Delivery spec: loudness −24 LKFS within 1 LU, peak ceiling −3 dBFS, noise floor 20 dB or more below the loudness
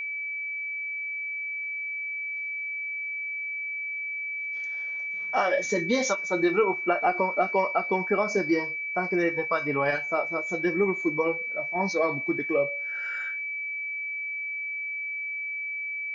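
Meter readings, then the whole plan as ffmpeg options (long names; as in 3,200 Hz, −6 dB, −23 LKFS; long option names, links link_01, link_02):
interfering tone 2,300 Hz; level of the tone −30 dBFS; integrated loudness −27.5 LKFS; sample peak −11.5 dBFS; target loudness −24.0 LKFS
→ -af "bandreject=frequency=2300:width=30"
-af "volume=3.5dB"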